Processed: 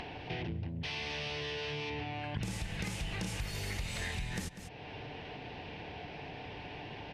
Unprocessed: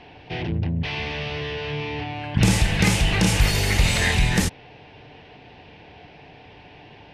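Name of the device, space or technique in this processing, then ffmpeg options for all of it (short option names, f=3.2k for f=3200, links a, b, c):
upward and downward compression: -filter_complex "[0:a]asettb=1/sr,asplit=3[a][b][c];[a]atrim=end=0.684[d];[b]atrim=start=0.68:end=1.9,asetpts=PTS-STARTPTS,afade=t=in:d=0.004:c=qsin,afade=t=out:st=1.216:d=0.004:c=qsin,bass=f=250:g=-4,treble=f=4k:g=11[e];[c]atrim=start=1.896[f];[d][e]acrossfade=d=0.004:c1=hsin:c2=qsin[g];[g][f]acrossfade=d=0.004:c1=qsin:c2=hsin,aecho=1:1:195:0.119,acompressor=mode=upward:threshold=-35dB:ratio=2.5,acompressor=threshold=-33dB:ratio=6,volume=-3dB"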